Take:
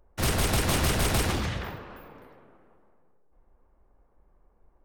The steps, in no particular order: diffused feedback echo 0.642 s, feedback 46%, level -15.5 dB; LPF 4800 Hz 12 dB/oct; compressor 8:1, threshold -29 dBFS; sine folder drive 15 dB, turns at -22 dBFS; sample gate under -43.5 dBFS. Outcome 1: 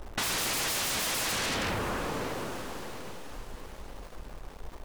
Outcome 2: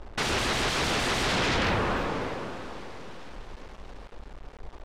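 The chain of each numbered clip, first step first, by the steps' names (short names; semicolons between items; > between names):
LPF > sine folder > sample gate > diffused feedback echo > compressor; compressor > sine folder > diffused feedback echo > sample gate > LPF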